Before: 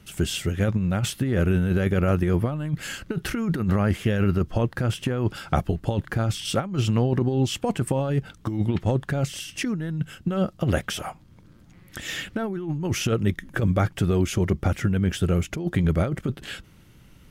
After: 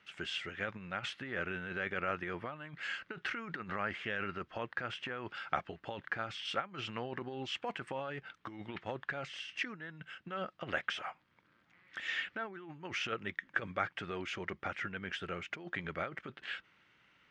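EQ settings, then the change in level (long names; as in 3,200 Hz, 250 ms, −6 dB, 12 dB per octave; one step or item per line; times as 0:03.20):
resonant band-pass 1,900 Hz, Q 1.2
high-frequency loss of the air 99 metres
−1.5 dB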